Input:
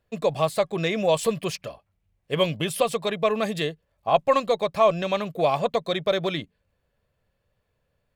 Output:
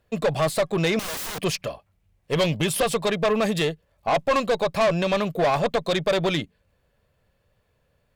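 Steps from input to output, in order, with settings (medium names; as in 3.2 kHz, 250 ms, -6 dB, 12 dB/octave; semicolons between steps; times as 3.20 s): valve stage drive 23 dB, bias 0.25; 0.99–1.39 s: integer overflow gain 33.5 dB; trim +6.5 dB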